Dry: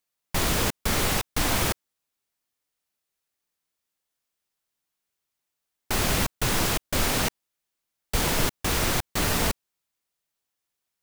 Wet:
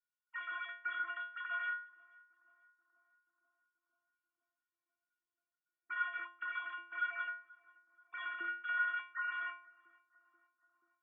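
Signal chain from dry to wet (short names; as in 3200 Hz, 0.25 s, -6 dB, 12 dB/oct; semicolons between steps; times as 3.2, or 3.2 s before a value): sine-wave speech; compressor, threshold -24 dBFS, peak gain reduction 6 dB; double band-pass 600 Hz, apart 2.4 oct; metallic resonator 340 Hz, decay 0.48 s, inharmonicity 0.008; on a send: darkening echo 0.483 s, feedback 84%, low-pass 990 Hz, level -20.5 dB; on the sum: gain +14 dB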